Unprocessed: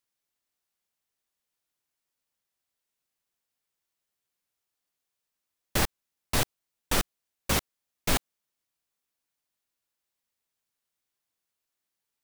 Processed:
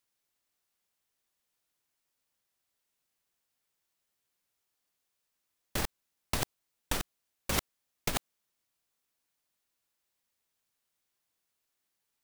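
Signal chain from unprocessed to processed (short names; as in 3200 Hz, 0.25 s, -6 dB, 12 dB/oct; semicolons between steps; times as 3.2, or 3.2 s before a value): negative-ratio compressor -27 dBFS, ratio -0.5; gain -2 dB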